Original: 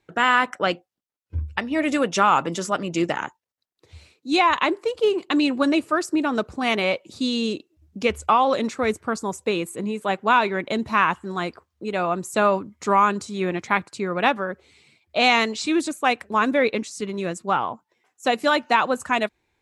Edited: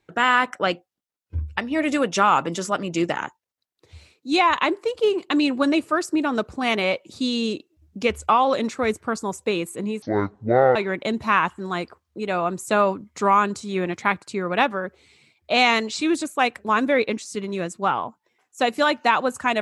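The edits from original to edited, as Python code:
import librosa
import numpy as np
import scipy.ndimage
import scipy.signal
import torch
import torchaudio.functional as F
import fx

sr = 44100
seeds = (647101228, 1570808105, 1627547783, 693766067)

y = fx.edit(x, sr, fx.speed_span(start_s=10.02, length_s=0.39, speed=0.53), tone=tone)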